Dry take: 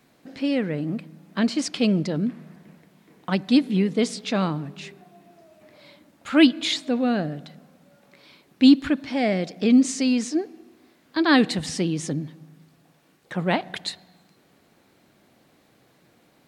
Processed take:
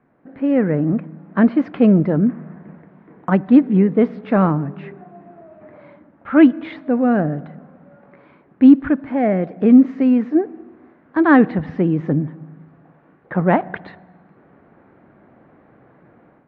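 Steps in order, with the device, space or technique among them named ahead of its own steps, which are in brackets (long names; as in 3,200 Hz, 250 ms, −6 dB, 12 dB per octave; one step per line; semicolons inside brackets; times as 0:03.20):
action camera in a waterproof case (low-pass filter 1,700 Hz 24 dB per octave; automatic gain control gain up to 10 dB; AAC 64 kbit/s 44,100 Hz)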